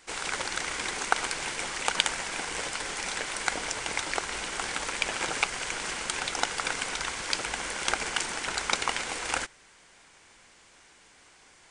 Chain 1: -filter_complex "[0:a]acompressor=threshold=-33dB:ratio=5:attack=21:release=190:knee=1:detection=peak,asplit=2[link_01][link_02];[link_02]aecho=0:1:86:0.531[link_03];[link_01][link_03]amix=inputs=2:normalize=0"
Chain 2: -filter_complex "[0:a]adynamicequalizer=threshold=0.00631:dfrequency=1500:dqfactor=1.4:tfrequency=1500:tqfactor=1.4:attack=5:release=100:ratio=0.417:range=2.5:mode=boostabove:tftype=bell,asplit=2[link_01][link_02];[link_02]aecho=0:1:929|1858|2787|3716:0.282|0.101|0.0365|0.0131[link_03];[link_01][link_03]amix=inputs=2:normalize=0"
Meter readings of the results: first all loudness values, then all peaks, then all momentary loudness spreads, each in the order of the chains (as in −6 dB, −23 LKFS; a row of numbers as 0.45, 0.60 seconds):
−32.0, −28.0 LKFS; −10.0, −2.0 dBFS; 1, 13 LU